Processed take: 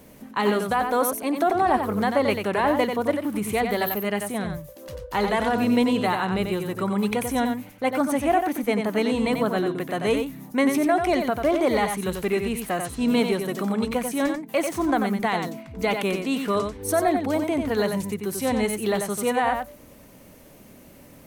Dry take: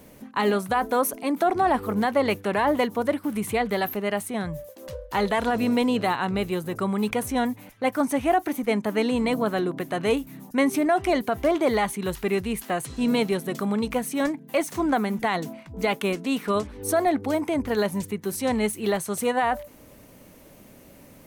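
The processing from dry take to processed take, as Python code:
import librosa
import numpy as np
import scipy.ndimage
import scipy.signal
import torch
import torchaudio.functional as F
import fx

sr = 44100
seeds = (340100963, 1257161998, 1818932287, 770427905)

y = fx.high_shelf(x, sr, hz=11000.0, db=8.5, at=(3.56, 4.11))
y = y + 10.0 ** (-6.0 / 20.0) * np.pad(y, (int(91 * sr / 1000.0), 0))[:len(y)]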